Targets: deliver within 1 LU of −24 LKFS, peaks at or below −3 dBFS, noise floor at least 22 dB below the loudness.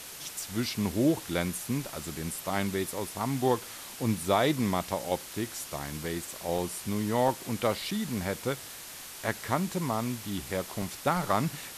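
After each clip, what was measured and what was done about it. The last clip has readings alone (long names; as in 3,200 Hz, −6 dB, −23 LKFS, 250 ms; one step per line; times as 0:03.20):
number of dropouts 4; longest dropout 3.2 ms; background noise floor −44 dBFS; target noise floor −53 dBFS; integrated loudness −31.0 LKFS; sample peak −12.0 dBFS; target loudness −24.0 LKFS
→ repair the gap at 0:06.58/0:07.28/0:07.91/0:10.82, 3.2 ms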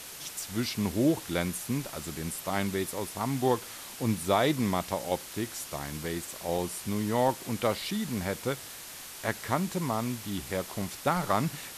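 number of dropouts 0; background noise floor −44 dBFS; target noise floor −53 dBFS
→ broadband denoise 9 dB, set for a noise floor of −44 dBFS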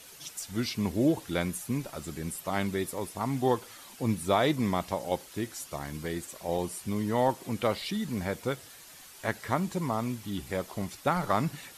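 background noise floor −50 dBFS; target noise floor −54 dBFS
→ broadband denoise 6 dB, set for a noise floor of −50 dBFS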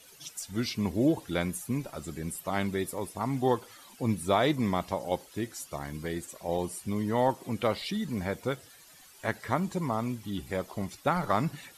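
background noise floor −55 dBFS; integrated loudness −31.5 LKFS; sample peak −12.5 dBFS; target loudness −24.0 LKFS
→ level +7.5 dB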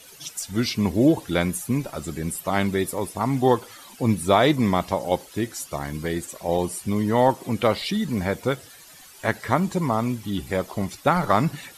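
integrated loudness −24.0 LKFS; sample peak −5.0 dBFS; background noise floor −47 dBFS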